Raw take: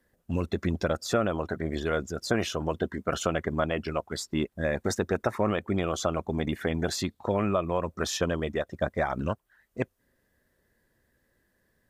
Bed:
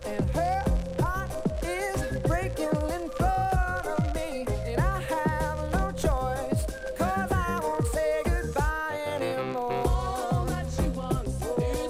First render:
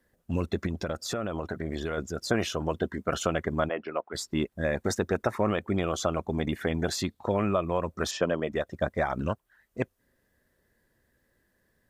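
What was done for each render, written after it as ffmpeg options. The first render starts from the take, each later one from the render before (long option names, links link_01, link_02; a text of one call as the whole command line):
ffmpeg -i in.wav -filter_complex "[0:a]asettb=1/sr,asplit=3[link_01][link_02][link_03];[link_01]atrim=end=0.664[link_04];[link_02]atrim=start=0.66:end=1.98,asetpts=PTS-STARTPTS,afade=type=in:duration=0.004:curve=qsin,afade=type=out:start_time=1.316:duration=0.004:curve=qsin,acompressor=threshold=-27dB:ratio=4:attack=3.2:release=140:knee=1:detection=peak[link_05];[link_03]atrim=start=1.976[link_06];[link_04][link_05]acrossfade=duration=0.004:curve1=hsin:curve2=qsin[link_07];[link_07][link_06]acrossfade=duration=0.004:curve1=qsin:curve2=hsin,asplit=3[link_08][link_09][link_10];[link_08]afade=type=out:start_time=3.68:duration=0.02[link_11];[link_09]highpass=340,lowpass=2100,afade=type=in:start_time=3.68:duration=0.02,afade=type=out:start_time=4.13:duration=0.02[link_12];[link_10]afade=type=in:start_time=4.13:duration=0.02[link_13];[link_11][link_12][link_13]amix=inputs=3:normalize=0,asettb=1/sr,asplit=3[link_14][link_15][link_16];[link_14]atrim=end=8.114[link_17];[link_15]atrim=start=8.11:end=8.52,asetpts=PTS-STARTPTS,afade=type=in:duration=0.004:curve=qsin,afade=type=out:start_time=0.406:duration=0.004:curve=qsin,highpass=150,equalizer=frequency=600:width_type=q:width=4:gain=5,equalizer=frequency=3800:width_type=q:width=4:gain=-8,equalizer=frequency=6100:width_type=q:width=4:gain=-8,lowpass=frequency=7200:width=0.5412,lowpass=frequency=7200:width=1.3066[link_18];[link_16]atrim=start=8.516[link_19];[link_17][link_18]acrossfade=duration=0.004:curve1=hsin:curve2=qsin[link_20];[link_20][link_19]acrossfade=duration=0.004:curve1=qsin:curve2=hsin" out.wav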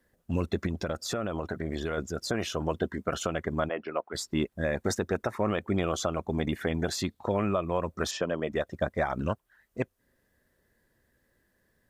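ffmpeg -i in.wav -af "alimiter=limit=-16dB:level=0:latency=1:release=288" out.wav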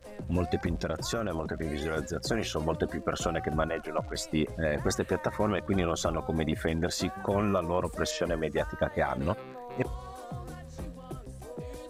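ffmpeg -i in.wav -i bed.wav -filter_complex "[1:a]volume=-13dB[link_01];[0:a][link_01]amix=inputs=2:normalize=0" out.wav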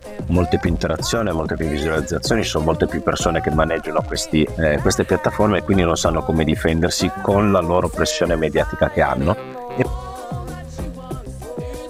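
ffmpeg -i in.wav -af "volume=12dB" out.wav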